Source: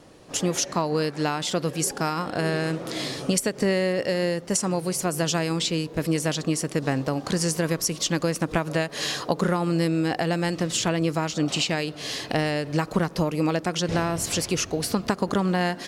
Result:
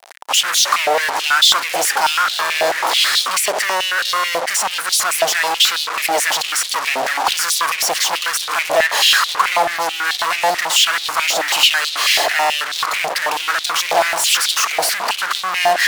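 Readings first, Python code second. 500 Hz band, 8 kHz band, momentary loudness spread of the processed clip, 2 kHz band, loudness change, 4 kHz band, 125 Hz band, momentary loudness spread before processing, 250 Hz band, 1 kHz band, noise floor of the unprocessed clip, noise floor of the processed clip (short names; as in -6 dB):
+3.0 dB, +10.5 dB, 6 LU, +15.0 dB, +10.0 dB, +15.5 dB, under -20 dB, 3 LU, -15.0 dB, +13.0 dB, -41 dBFS, -26 dBFS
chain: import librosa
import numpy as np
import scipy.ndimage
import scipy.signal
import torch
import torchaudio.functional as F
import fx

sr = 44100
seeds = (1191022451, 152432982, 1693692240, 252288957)

y = fx.fuzz(x, sr, gain_db=47.0, gate_db=-43.0)
y = fx.filter_held_highpass(y, sr, hz=9.2, low_hz=700.0, high_hz=3700.0)
y = y * librosa.db_to_amplitude(-2.5)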